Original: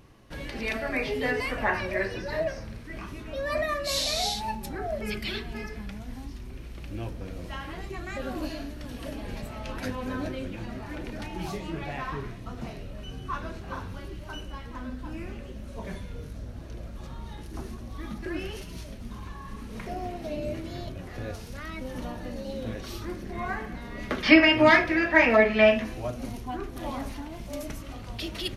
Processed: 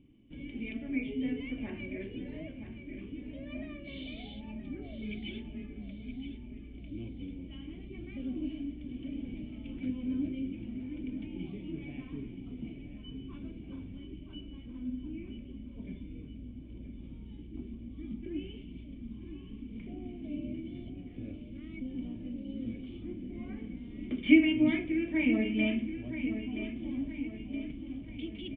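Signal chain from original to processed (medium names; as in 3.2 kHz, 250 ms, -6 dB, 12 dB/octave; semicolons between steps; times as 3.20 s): cascade formant filter i; feedback delay 972 ms, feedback 46%, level -10.5 dB; trim +3 dB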